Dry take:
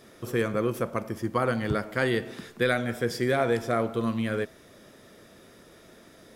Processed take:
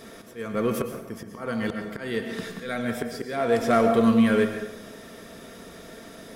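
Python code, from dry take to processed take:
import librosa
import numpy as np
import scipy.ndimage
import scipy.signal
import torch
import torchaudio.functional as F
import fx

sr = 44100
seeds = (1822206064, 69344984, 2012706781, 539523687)

p1 = x + 0.39 * np.pad(x, (int(4.4 * sr / 1000.0), 0))[:len(x)]
p2 = fx.auto_swell(p1, sr, attack_ms=548.0)
p3 = np.clip(p2, -10.0 ** (-30.0 / 20.0), 10.0 ** (-30.0 / 20.0))
p4 = p2 + (p3 * 10.0 ** (-6.5 / 20.0))
p5 = fx.rev_plate(p4, sr, seeds[0], rt60_s=0.84, hf_ratio=0.75, predelay_ms=100, drr_db=6.5)
y = p5 * 10.0 ** (4.0 / 20.0)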